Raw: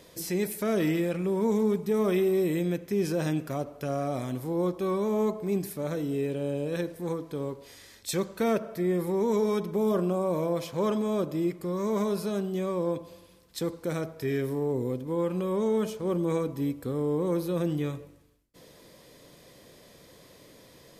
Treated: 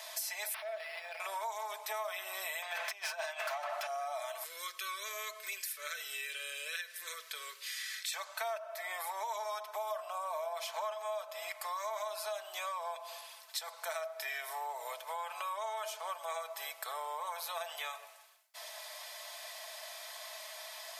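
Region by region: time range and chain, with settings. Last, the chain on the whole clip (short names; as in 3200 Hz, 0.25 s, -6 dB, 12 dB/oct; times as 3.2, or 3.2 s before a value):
0.54–1.2 Butterworth band-stop 1100 Hz, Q 1.3 + compressor 12:1, threshold -35 dBFS + decimation joined by straight lines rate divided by 6×
2.62–3.87 low shelf 460 Hz -5.5 dB + negative-ratio compressor -38 dBFS, ratio -0.5 + overdrive pedal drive 27 dB, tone 2500 Hz, clips at -19 dBFS
4.44–8.13 Butterworth band-stop 780 Hz, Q 0.61 + low shelf 230 Hz +11.5 dB + three-band squash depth 40%
whole clip: Chebyshev high-pass 630 Hz, order 6; comb 4.6 ms, depth 58%; compressor 6:1, threshold -47 dBFS; gain +10 dB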